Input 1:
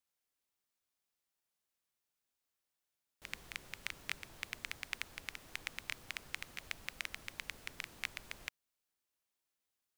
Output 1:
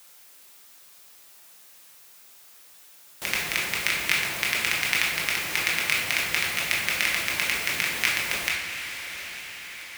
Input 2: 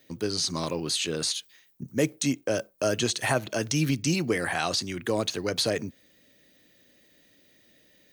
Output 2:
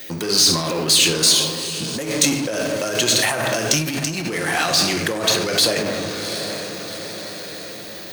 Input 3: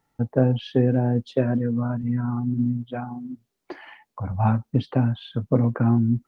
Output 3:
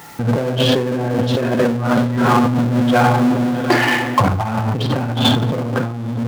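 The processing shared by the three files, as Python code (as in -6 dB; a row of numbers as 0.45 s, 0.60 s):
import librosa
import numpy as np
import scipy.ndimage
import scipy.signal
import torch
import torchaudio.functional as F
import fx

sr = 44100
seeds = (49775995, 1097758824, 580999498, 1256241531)

y = fx.high_shelf(x, sr, hz=2700.0, db=-6.0)
y = fx.echo_diffused(y, sr, ms=767, feedback_pct=47, wet_db=-15.0)
y = fx.room_shoebox(y, sr, seeds[0], volume_m3=550.0, walls='mixed', distance_m=0.87)
y = fx.over_compress(y, sr, threshold_db=-30.0, ratio=-1.0)
y = scipy.signal.sosfilt(scipy.signal.butter(2, 56.0, 'highpass', fs=sr, output='sos'), y)
y = fx.power_curve(y, sr, exponent=0.7)
y = fx.tilt_eq(y, sr, slope=2.5)
y = fx.sustainer(y, sr, db_per_s=69.0)
y = librosa.util.normalize(y) * 10.0 ** (-2 / 20.0)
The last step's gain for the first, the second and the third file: +12.0 dB, +5.5 dB, +13.5 dB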